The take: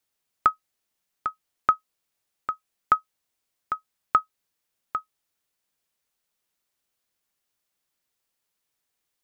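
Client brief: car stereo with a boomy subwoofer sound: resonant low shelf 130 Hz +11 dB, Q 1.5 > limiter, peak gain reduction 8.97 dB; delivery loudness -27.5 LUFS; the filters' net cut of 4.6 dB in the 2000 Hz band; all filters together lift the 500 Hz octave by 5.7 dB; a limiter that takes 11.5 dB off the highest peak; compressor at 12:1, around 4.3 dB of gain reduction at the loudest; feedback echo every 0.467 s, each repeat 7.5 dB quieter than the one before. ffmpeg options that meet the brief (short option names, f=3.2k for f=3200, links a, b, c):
-af "equalizer=f=500:t=o:g=8.5,equalizer=f=2k:t=o:g=-8,acompressor=threshold=-21dB:ratio=12,alimiter=limit=-19dB:level=0:latency=1,lowshelf=f=130:t=q:w=1.5:g=11,aecho=1:1:467|934|1401|1868|2335:0.422|0.177|0.0744|0.0312|0.0131,volume=19dB,alimiter=limit=-8.5dB:level=0:latency=1"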